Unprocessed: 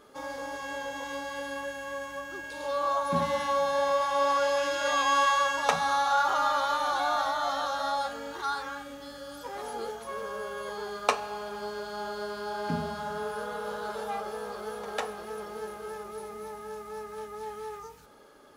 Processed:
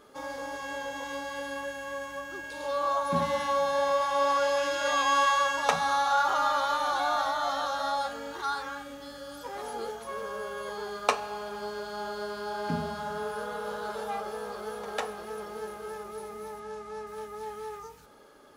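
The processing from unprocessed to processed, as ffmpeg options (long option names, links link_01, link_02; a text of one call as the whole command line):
ffmpeg -i in.wav -filter_complex "[0:a]asettb=1/sr,asplit=3[link_01][link_02][link_03];[link_01]atrim=end=16.604[link_04];[link_02]atrim=start=16.6:end=17.07,asetpts=PTS-STARTPTS,afade=type=in:duration=0.004:curve=qsin,afade=type=out:start_time=0.466:duration=0.004:curve=qsin,lowpass=8000[link_05];[link_03]atrim=start=17.066[link_06];[link_04][link_05]acrossfade=duration=0.004:curve1=hsin:curve2=qsin[link_07];[link_07][link_06]acrossfade=duration=0.004:curve1=qsin:curve2=hsin" out.wav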